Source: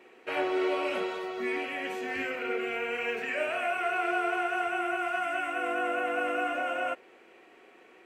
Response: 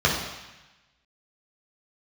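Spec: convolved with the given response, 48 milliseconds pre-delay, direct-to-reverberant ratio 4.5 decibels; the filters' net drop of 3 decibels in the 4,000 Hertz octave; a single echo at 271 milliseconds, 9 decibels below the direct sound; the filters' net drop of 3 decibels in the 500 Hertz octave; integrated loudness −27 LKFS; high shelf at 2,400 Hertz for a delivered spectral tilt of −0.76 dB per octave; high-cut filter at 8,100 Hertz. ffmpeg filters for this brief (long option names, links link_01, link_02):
-filter_complex "[0:a]lowpass=8100,equalizer=frequency=500:width_type=o:gain=-4.5,highshelf=frequency=2400:gain=3,equalizer=frequency=4000:width_type=o:gain=-8,aecho=1:1:271:0.355,asplit=2[link_01][link_02];[1:a]atrim=start_sample=2205,adelay=48[link_03];[link_02][link_03]afir=irnorm=-1:irlink=0,volume=-22dB[link_04];[link_01][link_04]amix=inputs=2:normalize=0,volume=3.5dB"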